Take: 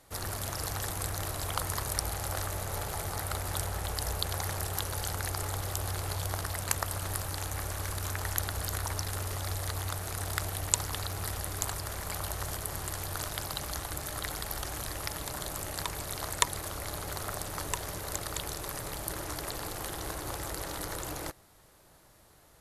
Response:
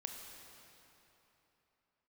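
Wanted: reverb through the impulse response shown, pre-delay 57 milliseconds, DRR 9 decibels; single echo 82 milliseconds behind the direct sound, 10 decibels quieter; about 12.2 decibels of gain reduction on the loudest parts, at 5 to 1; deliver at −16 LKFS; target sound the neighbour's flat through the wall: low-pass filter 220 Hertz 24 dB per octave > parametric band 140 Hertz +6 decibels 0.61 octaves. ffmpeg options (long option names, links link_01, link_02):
-filter_complex "[0:a]acompressor=threshold=-36dB:ratio=5,aecho=1:1:82:0.316,asplit=2[link_01][link_02];[1:a]atrim=start_sample=2205,adelay=57[link_03];[link_02][link_03]afir=irnorm=-1:irlink=0,volume=-7dB[link_04];[link_01][link_04]amix=inputs=2:normalize=0,lowpass=frequency=220:width=0.5412,lowpass=frequency=220:width=1.3066,equalizer=frequency=140:width_type=o:width=0.61:gain=6,volume=29.5dB"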